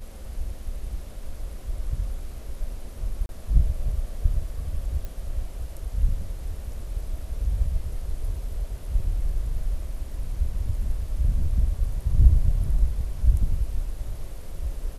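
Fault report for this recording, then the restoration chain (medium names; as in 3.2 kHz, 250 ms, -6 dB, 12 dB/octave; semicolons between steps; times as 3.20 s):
3.26–3.29 s: dropout 31 ms
5.05 s: pop -21 dBFS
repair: de-click; interpolate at 3.26 s, 31 ms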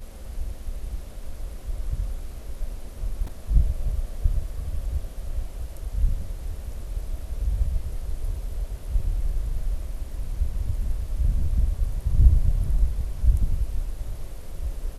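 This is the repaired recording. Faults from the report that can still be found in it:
nothing left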